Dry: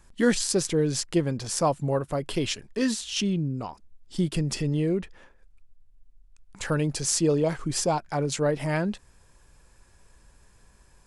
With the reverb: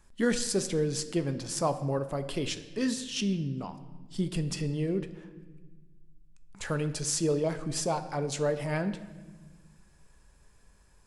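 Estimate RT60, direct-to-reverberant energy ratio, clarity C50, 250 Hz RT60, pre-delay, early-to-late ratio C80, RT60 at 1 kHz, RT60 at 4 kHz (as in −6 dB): 1.3 s, 9.0 dB, 12.5 dB, 1.9 s, 5 ms, 14.0 dB, 1.2 s, 1.1 s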